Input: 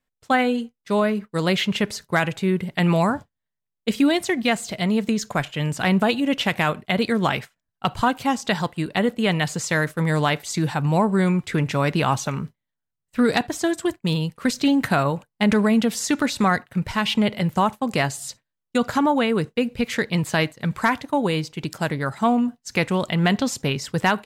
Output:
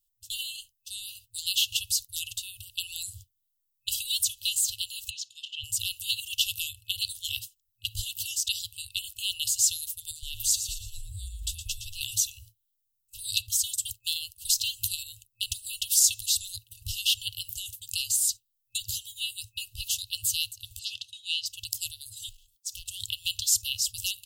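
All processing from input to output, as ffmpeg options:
-filter_complex "[0:a]asettb=1/sr,asplit=3[s0][s1][s2];[s0]atrim=end=5.104[s3];[s1]atrim=start=5.1:end=5.64,asetpts=PTS-STARTPTS,afade=t=in:d=0.004:c=qsin,afade=t=out:st=0.536:d=0.004:c=qsin,highpass=630,lowpass=3100,equalizer=f=1400:w=0.46:g=4.5[s4];[s2]atrim=start=5.636[s5];[s3][s4]acrossfade=d=0.004:c1=hsin:c2=qsin[s6];[s6][s5]acrossfade=d=0.004:c1=qsin:c2=hsin,asettb=1/sr,asplit=3[s7][s8][s9];[s7]atrim=end=10.114[s10];[s8]atrim=start=10.11:end=12.01,asetpts=PTS-STARTPTS,afade=t=in:d=0.004:c=qsin,afade=t=out:st=1.896:d=0.004:c=qsin,acompressor=threshold=0.0562:ratio=4:attack=3.2:release=140:knee=1:detection=peak,asplit=5[s11][s12][s13][s14][s15];[s12]adelay=115,afreqshift=-130,volume=0.355[s16];[s13]adelay=230,afreqshift=-260,volume=0.138[s17];[s14]adelay=345,afreqshift=-390,volume=0.0537[s18];[s15]adelay=460,afreqshift=-520,volume=0.0211[s19];[s11][s16][s17][s18][s19]amix=inputs=5:normalize=0,atrim=end_sample=83790[s20];[s9]atrim=start=12.006[s21];[s10][s20]acrossfade=d=0.004:c1=hsin:c2=qsin[s22];[s22][s21]acrossfade=d=0.004:c1=qsin:c2=hsin,asettb=1/sr,asplit=3[s23][s24][s25];[s23]atrim=end=20.794[s26];[s24]atrim=start=20.79:end=21.46,asetpts=PTS-STARTPTS,afade=t=in:d=0.004:c=qsin,afade=t=out:st=0.666:d=0.004:c=qsin,acontrast=62,highpass=270,lowpass=3600[s27];[s25]atrim=start=21.456[s28];[s26][s27]acrossfade=d=0.004:c1=hsin:c2=qsin[s29];[s29][s28]acrossfade=d=0.004:c1=qsin:c2=hsin,asettb=1/sr,asplit=3[s30][s31][s32];[s30]atrim=end=22.294[s33];[s31]atrim=start=22.29:end=22.86,asetpts=PTS-STARTPTS,afade=t=in:d=0.004:c=qsin,afade=t=out:st=0.566:d=0.004:c=qsin,acompressor=threshold=0.0224:ratio=3:attack=3.2:release=140:knee=1:detection=peak,aeval=exprs='val(0)*sin(2*PI*460*n/s)':c=same,volume=26.6,asoftclip=hard,volume=0.0376[s34];[s32]atrim=start=22.856[s35];[s33][s34]acrossfade=d=0.004:c1=hsin:c2=qsin[s36];[s36][s35]acrossfade=d=0.004:c1=qsin:c2=hsin,aemphasis=mode=production:type=50fm,afftfilt=real='re*(1-between(b*sr/4096,110,2600))':imag='im*(1-between(b*sr/4096,110,2600))':win_size=4096:overlap=0.75,equalizer=f=2300:t=o:w=0.38:g=-12"

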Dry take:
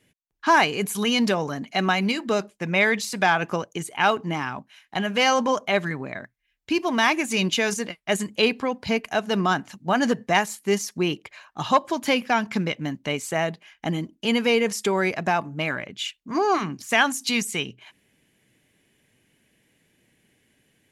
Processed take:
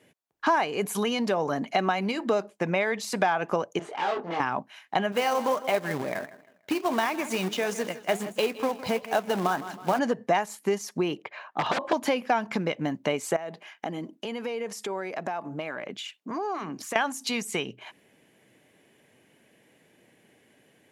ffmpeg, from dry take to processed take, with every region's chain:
-filter_complex "[0:a]asettb=1/sr,asplit=3[s0][s1][s2];[s0]atrim=end=3.794[s3];[s1]atrim=start=3.79:end=4.4,asetpts=PTS-STARTPTS,afade=t=in:d=0.004:c=qsin,afade=t=out:st=0.606:d=0.004:c=qsin,aeval=exprs='(tanh(50.1*val(0)+0.6)-tanh(0.6))/50.1':c=same,highpass=270,lowpass=4100,asplit=2[s4][s5];[s5]adelay=24,volume=0.708[s6];[s4][s6]amix=inputs=2:normalize=0,atrim=end_sample=26901[s7];[s2]atrim=start=4.396[s8];[s3][s7]acrossfade=d=0.004:c1=hsin:c2=qsin[s9];[s9][s8]acrossfade=d=0.004:c1=qsin:c2=hsin,asettb=1/sr,asplit=3[s10][s11][s12];[s10]atrim=end=5.124[s13];[s11]atrim=start=5.12:end=9.99,asetpts=PTS-STARTPTS,afade=t=in:d=0.004:c=qsin,afade=t=out:st=4.866:d=0.004:c=qsin,aecho=1:1:159|318|477:0.126|0.0428|0.0146,atrim=end_sample=214767,flanger=delay=2.2:depth=8.9:regen=73:speed=1.5:shape=triangular,acrusher=bits=2:mode=log:mix=0:aa=0.000001[s14];[s12]atrim=start=9.986[s15];[s13][s14]acrossfade=d=0.004:c1=hsin:c2=qsin[s16];[s16][s15]acrossfade=d=0.004:c1=qsin:c2=hsin,asettb=1/sr,asplit=3[s17][s18][s19];[s17]atrim=end=11.224[s20];[s18]atrim=start=11.22:end=11.93,asetpts=PTS-STARTPTS,afade=t=in:d=0.004:c=qsin,afade=t=out:st=0.706:d=0.004:c=qsin,aeval=exprs='(mod(10.6*val(0)+1,2)-1)/10.6':c=same,highpass=140,lowpass=3400[s21];[s19]atrim=start=11.926[s22];[s20][s21]acrossfade=d=0.004:c1=hsin:c2=qsin[s23];[s23][s22]acrossfade=d=0.004:c1=qsin:c2=hsin,asettb=1/sr,asplit=3[s24][s25][s26];[s24]atrim=end=13.364[s27];[s25]atrim=start=13.36:end=16.96,asetpts=PTS-STARTPTS,afade=t=in:d=0.004:c=qsin,afade=t=out:st=3.596:d=0.004:c=qsin,highpass=160,acompressor=threshold=0.0178:ratio=12:attack=3.2:release=140:knee=1:detection=peak[s28];[s26]atrim=start=16.956[s29];[s27][s28]acrossfade=d=0.004:c1=hsin:c2=qsin[s30];[s30][s29]acrossfade=d=0.004:c1=qsin:c2=hsin,acompressor=threshold=0.0355:ratio=6,highpass=100,equalizer=f=660:w=0.55:g=10"

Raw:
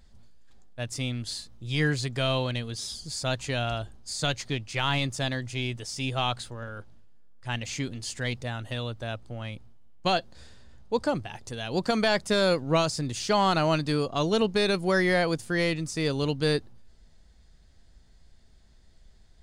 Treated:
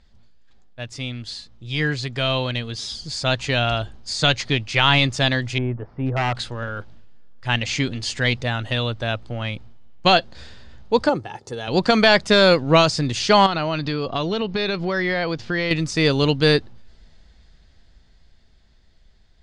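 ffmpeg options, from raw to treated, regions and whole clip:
-filter_complex "[0:a]asettb=1/sr,asplit=3[s0][s1][s2];[s0]atrim=end=5.584[s3];[s1]atrim=start=5.58:end=6.35,asetpts=PTS-STARTPTS,afade=t=in:d=0.004:c=qsin,afade=t=out:st=0.766:d=0.004:c=qsin,lowpass=f=1300:w=0.5412,lowpass=f=1300:w=1.3066,aeval=exprs='0.0562*(abs(mod(val(0)/0.0562+3,4)-2)-1)':c=same[s4];[s2]atrim=start=6.346[s5];[s3][s4]acrossfade=d=0.004:c1=hsin:c2=qsin[s6];[s6][s5]acrossfade=d=0.004:c1=qsin:c2=hsin,asettb=1/sr,asplit=3[s7][s8][s9];[s7]atrim=end=11.094[s10];[s8]atrim=start=11.09:end=11.68,asetpts=PTS-STARTPTS,afade=t=in:d=0.004:c=qsin,afade=t=out:st=0.586:d=0.004:c=qsin,highpass=160,equalizer=f=2800:w=0.69:g=-12.5,aecho=1:1:2.3:0.43,atrim=end_sample=26019[s11];[s9]atrim=start=11.676[s12];[s10][s11]acrossfade=d=0.004:c1=hsin:c2=qsin[s13];[s13][s12]acrossfade=d=0.004:c1=qsin:c2=hsin,asettb=1/sr,asplit=3[s14][s15][s16];[s14]atrim=end=13.464[s17];[s15]atrim=start=13.46:end=15.71,asetpts=PTS-STARTPTS,afade=t=in:d=0.004:c=qsin,afade=t=out:st=2.246:d=0.004:c=qsin,lowpass=f=5400:w=0.5412,lowpass=f=5400:w=1.3066,acompressor=threshold=0.0355:ratio=5:attack=3.2:release=140:knee=1:detection=peak[s18];[s16]atrim=start=15.706[s19];[s17][s18]acrossfade=d=0.004:c1=hsin:c2=qsin[s20];[s20][s19]acrossfade=d=0.004:c1=qsin:c2=hsin,lowpass=5300,equalizer=f=3000:w=0.5:g=4,dynaudnorm=f=340:g=17:m=3.76"

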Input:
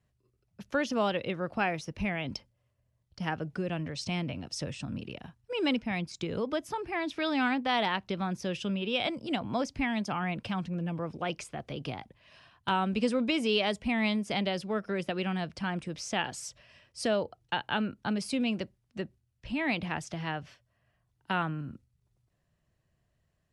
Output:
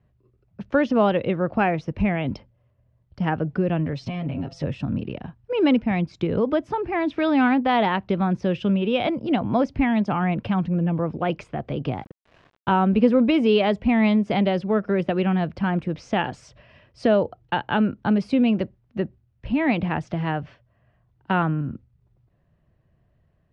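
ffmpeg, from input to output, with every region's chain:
-filter_complex "[0:a]asettb=1/sr,asplit=3[s0][s1][s2];[s0]atrim=end=3.924[s3];[s1]atrim=start=3.92:end=4.64,asetpts=PTS-STARTPTS,afade=t=in:d=0.004:c=qsin,afade=t=out:st=0.716:d=0.004:c=qsin,aecho=1:1:7.4:0.99,atrim=end_sample=31752,bandreject=f=169.5:t=h:w=4,bandreject=f=339:t=h:w=4,bandreject=f=508.5:t=h:w=4,bandreject=f=678:t=h:w=4,bandreject=f=847.5:t=h:w=4,bandreject=f=1017:t=h:w=4,bandreject=f=1186.5:t=h:w=4,bandreject=f=1356:t=h:w=4,bandreject=f=1525.5:t=h:w=4,bandreject=f=1695:t=h:w=4,bandreject=f=1864.5:t=h:w=4,acompressor=threshold=0.02:ratio=10:attack=3.2:release=140:knee=1:detection=peak[s4];[s2]atrim=start=4.636[s5];[s3][s4]acrossfade=d=0.004:c1=hsin:c2=qsin[s6];[s6][s5]acrossfade=d=0.004:c1=qsin:c2=hsin,asettb=1/sr,asplit=3[s7][s8][s9];[s7]atrim=end=11.894[s10];[s8]atrim=start=11.89:end=13.29,asetpts=PTS-STARTPTS,afade=t=in:d=0.004:c=qsin,afade=t=out:st=1.396:d=0.004:c=qsin,aemphasis=mode=reproduction:type=cd,aeval=exprs='val(0)*gte(abs(val(0)),0.00211)':c=same[s11];[s9]atrim=start=13.286[s12];[s10][s11]acrossfade=d=0.004:c1=hsin:c2=qsin[s13];[s13][s12]acrossfade=d=0.004:c1=qsin:c2=hsin,lowpass=3100,tiltshelf=f=1200:g=4.5,volume=2.24"

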